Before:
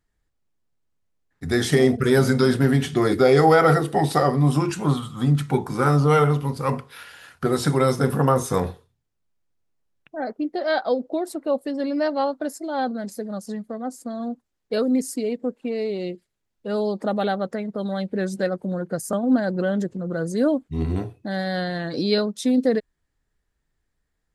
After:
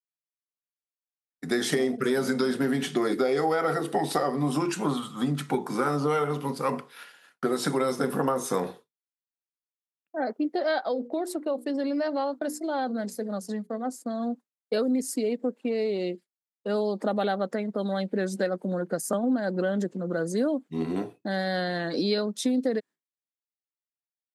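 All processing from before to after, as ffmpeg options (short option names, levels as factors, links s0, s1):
-filter_complex "[0:a]asettb=1/sr,asplit=3[s0][s1][s2];[s0]atrim=end=10.824[s3];[s1]atrim=start=10.82:end=13.89,asetpts=PTS-STARTPTS,afade=t=in:d=0.004:c=qsin,afade=t=out:st=3.066:d=0.004:c=qsin,agate=range=0.141:threshold=0.00501:ratio=16:release=100:detection=peak,bandreject=f=60:t=h:w=6,bandreject=f=120:t=h:w=6,bandreject=f=180:t=h:w=6,bandreject=f=240:t=h:w=6,bandreject=f=300:t=h:w=6,bandreject=f=360:t=h:w=6,bandreject=f=420:t=h:w=6,bandreject=f=480:t=h:w=6,acompressor=threshold=0.0631:ratio=3:attack=3.2:release=140:knee=1:detection=peak[s4];[s2]atrim=start=13.886[s5];[s3][s4]acrossfade=d=0.004:c1=hsin:c2=qsin[s6];[s6][s5]acrossfade=d=0.004:c1=qsin:c2=hsin,agate=range=0.0224:threshold=0.0158:ratio=3:detection=peak,highpass=f=190:w=0.5412,highpass=f=190:w=1.3066,acompressor=threshold=0.0794:ratio=6"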